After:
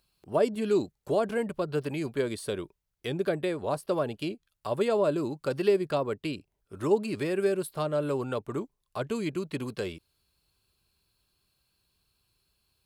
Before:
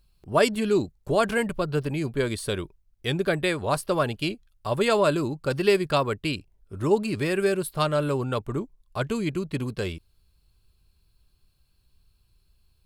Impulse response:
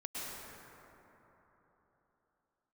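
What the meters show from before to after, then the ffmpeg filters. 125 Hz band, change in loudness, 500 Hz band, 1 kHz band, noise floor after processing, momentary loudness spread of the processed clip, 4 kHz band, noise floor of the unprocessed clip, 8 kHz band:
−7.5 dB, −4.0 dB, −3.0 dB, −7.0 dB, −80 dBFS, 11 LU, −9.5 dB, −67 dBFS, −8.0 dB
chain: -filter_complex "[0:a]highpass=frequency=310:poles=1,acrossover=split=720[link_01][link_02];[link_02]acompressor=threshold=-38dB:ratio=6[link_03];[link_01][link_03]amix=inputs=2:normalize=0"

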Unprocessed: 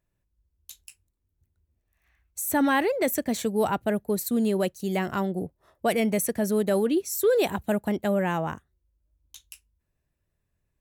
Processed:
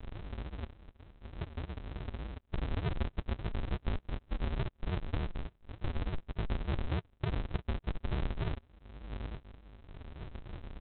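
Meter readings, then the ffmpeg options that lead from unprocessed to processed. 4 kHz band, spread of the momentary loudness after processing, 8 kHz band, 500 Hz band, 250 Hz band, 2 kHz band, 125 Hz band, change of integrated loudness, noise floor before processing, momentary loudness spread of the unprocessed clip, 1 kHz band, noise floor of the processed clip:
−10.0 dB, 14 LU, below −40 dB, −20.0 dB, −16.5 dB, −14.5 dB, +0.5 dB, −14.0 dB, −79 dBFS, 8 LU, −16.0 dB, −68 dBFS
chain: -af "acompressor=mode=upward:threshold=-27dB:ratio=2.5,alimiter=limit=-21dB:level=0:latency=1:release=251,acompressor=threshold=-37dB:ratio=10,aresample=8000,acrusher=samples=41:mix=1:aa=0.000001:lfo=1:lforange=24.6:lforate=3.4,aresample=44100,volume=6.5dB"

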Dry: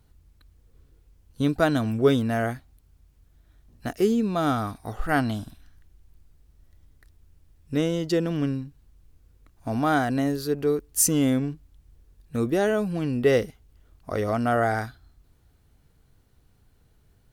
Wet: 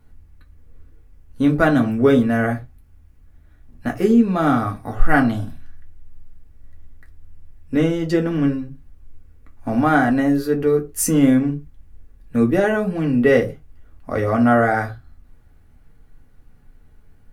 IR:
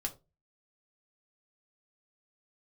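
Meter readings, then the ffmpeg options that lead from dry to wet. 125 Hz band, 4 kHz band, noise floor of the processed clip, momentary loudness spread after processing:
+5.0 dB, −0.5 dB, −50 dBFS, 13 LU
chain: -filter_complex "[0:a]highshelf=frequency=2800:width_type=q:width=1.5:gain=-6[link_01];[1:a]atrim=start_sample=2205,atrim=end_sample=6174[link_02];[link_01][link_02]afir=irnorm=-1:irlink=0,volume=5dB"

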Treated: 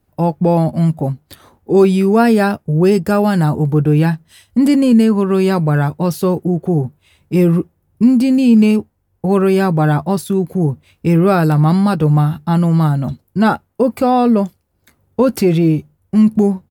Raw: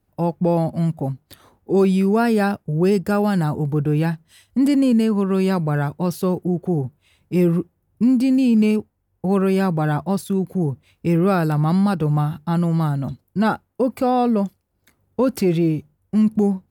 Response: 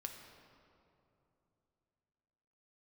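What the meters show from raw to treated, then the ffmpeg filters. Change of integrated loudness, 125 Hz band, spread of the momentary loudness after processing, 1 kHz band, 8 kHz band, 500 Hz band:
+5.5 dB, +6.5 dB, 8 LU, +5.5 dB, can't be measured, +6.0 dB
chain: -filter_complex "[0:a]asplit=2[link_01][link_02];[link_02]adelay=13,volume=-13dB[link_03];[link_01][link_03]amix=inputs=2:normalize=0,volume=5.5dB"

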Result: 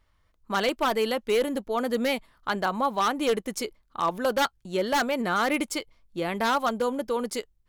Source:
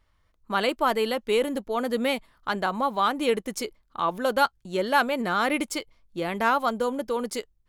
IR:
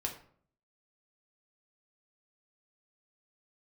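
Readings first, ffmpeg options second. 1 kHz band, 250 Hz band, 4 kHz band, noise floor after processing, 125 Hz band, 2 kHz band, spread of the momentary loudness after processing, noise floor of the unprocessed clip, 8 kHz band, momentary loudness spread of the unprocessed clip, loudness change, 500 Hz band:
−1.5 dB, 0.0 dB, 0.0 dB, −67 dBFS, 0.0 dB, −1.5 dB, 7 LU, −67 dBFS, +1.5 dB, 9 LU, −1.0 dB, −0.5 dB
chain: -af "aeval=exprs='0.15*(abs(mod(val(0)/0.15+3,4)-2)-1)':channel_layout=same"

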